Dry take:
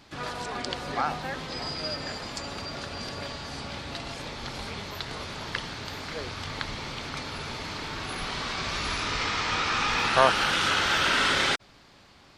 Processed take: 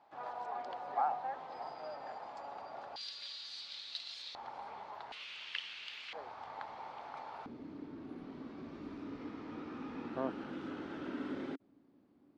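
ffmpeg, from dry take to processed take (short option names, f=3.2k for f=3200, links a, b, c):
-af "asetnsamples=n=441:p=0,asendcmd='2.96 bandpass f 4000;4.35 bandpass f 840;5.12 bandpass f 2800;6.13 bandpass f 810;7.46 bandpass f 280',bandpass=f=790:t=q:w=4.1:csg=0"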